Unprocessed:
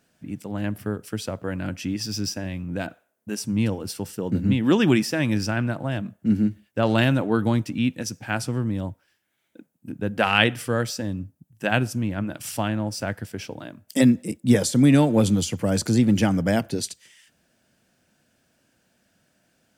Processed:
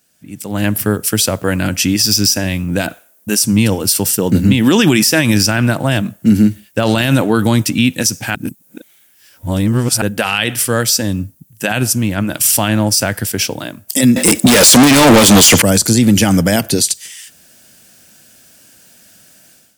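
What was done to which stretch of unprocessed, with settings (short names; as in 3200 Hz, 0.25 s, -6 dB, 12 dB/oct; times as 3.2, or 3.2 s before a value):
8.35–10.02 reverse
14.16–15.62 overdrive pedal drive 34 dB, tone 3300 Hz, clips at -5.5 dBFS
whole clip: pre-emphasis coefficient 0.8; AGC gain up to 15 dB; maximiser +12.5 dB; gain -1 dB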